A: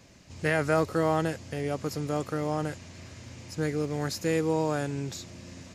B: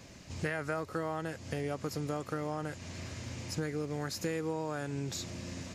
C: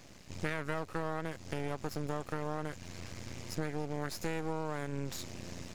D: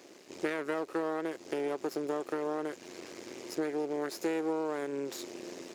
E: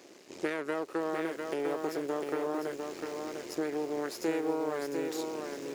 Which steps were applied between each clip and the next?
dynamic equaliser 1,400 Hz, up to +4 dB, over −39 dBFS, Q 1.2; downward compressor 6 to 1, threshold −35 dBFS, peak gain reduction 16 dB; level +3 dB
half-wave rectification; level +1 dB
high-pass with resonance 360 Hz, resonance Q 3.4
feedback echo at a low word length 701 ms, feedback 35%, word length 9 bits, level −4.5 dB

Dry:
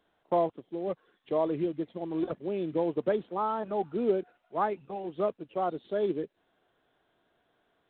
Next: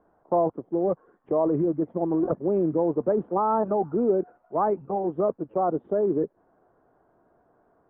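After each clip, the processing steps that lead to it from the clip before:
low-pass filter 1,200 Hz 24 dB per octave
in parallel at −1.5 dB: compressor whose output falls as the input rises −32 dBFS, ratio −0.5
on the sum: level +3 dB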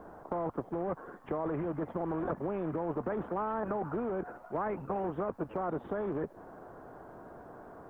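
brickwall limiter −22 dBFS, peak gain reduction 11 dB
every bin compressed towards the loudest bin 2 to 1
level +1.5 dB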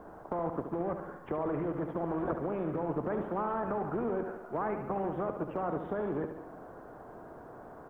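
repeating echo 71 ms, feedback 60%, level −8 dB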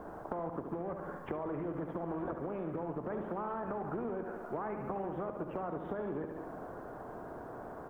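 downward compressor, threshold −38 dBFS, peak gain reduction 10 dB
convolution reverb RT60 0.40 s, pre-delay 42 ms, DRR 15.5 dB
level +3 dB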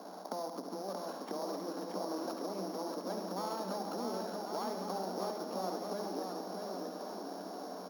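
samples sorted by size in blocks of 8 samples
Chebyshev high-pass with heavy ripple 180 Hz, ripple 6 dB
bouncing-ball delay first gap 630 ms, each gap 0.75×, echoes 5
level +1 dB

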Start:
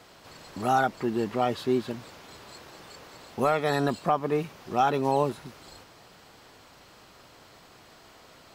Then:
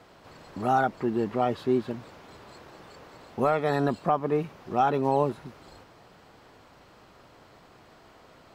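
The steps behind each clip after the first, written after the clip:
high-shelf EQ 2,700 Hz −11 dB
level +1 dB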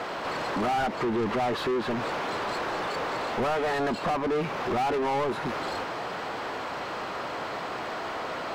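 downward compressor 2.5 to 1, threshold −33 dBFS, peak gain reduction 10 dB
mid-hump overdrive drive 33 dB, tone 2,000 Hz, clips at −19.5 dBFS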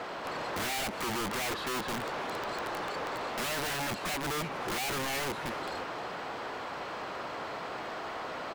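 wrap-around overflow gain 25 dB
far-end echo of a speakerphone 310 ms, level −6 dB
level −5.5 dB

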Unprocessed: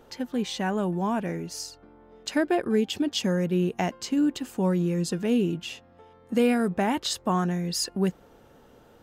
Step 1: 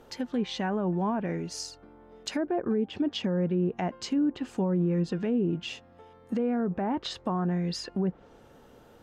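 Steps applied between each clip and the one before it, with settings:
treble cut that deepens with the level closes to 1,100 Hz, closed at −20.5 dBFS
brickwall limiter −20 dBFS, peak gain reduction 7.5 dB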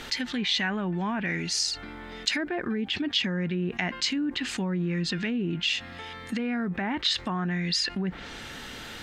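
graphic EQ with 10 bands 125 Hz −3 dB, 500 Hz −9 dB, 1,000 Hz −3 dB, 2,000 Hz +12 dB, 4,000 Hz +11 dB, 8,000 Hz +6 dB
envelope flattener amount 50%
level −4 dB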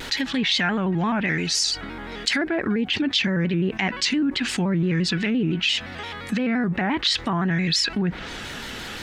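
in parallel at +0.5 dB: brickwall limiter −20.5 dBFS, peak gain reduction 9.5 dB
on the sum: pitch modulation by a square or saw wave square 5.8 Hz, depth 100 cents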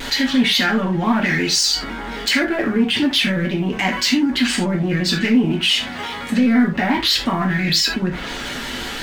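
leveller curve on the samples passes 2
reverb whose tail is shaped and stops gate 110 ms falling, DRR −1 dB
level −4.5 dB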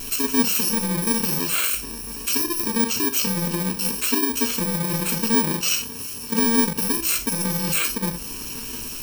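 samples in bit-reversed order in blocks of 64 samples
flanger 0.43 Hz, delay 5.8 ms, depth 6 ms, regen +83%
one half of a high-frequency compander encoder only

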